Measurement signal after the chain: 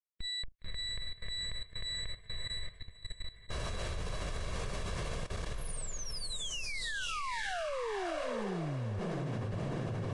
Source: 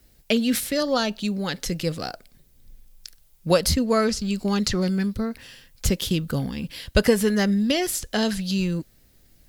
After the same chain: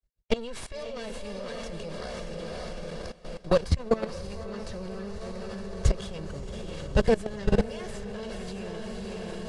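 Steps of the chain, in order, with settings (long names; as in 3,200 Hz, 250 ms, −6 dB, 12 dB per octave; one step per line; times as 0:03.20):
lower of the sound and its delayed copy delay 1.8 ms
spectral tilt −1.5 dB per octave
on a send: feedback delay with all-pass diffusion 561 ms, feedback 60%, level −4 dB
on the sum: noise gate with hold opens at −34 dBFS
output level in coarse steps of 18 dB
high-shelf EQ 4,700 Hz −4 dB
Ogg Vorbis 48 kbit/s 22,050 Hz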